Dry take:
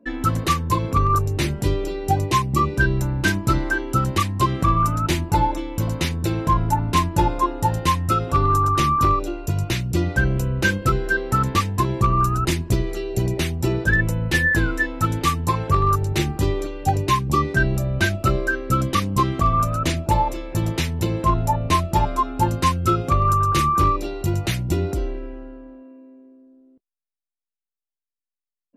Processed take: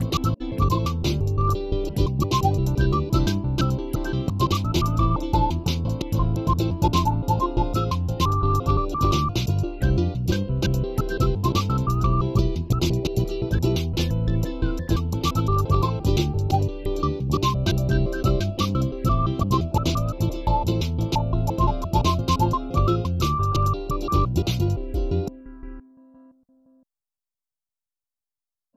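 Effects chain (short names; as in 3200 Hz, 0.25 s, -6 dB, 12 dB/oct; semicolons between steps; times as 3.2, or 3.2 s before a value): slices in reverse order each 0.172 s, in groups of 3; envelope phaser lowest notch 350 Hz, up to 1800 Hz, full sweep at -21.5 dBFS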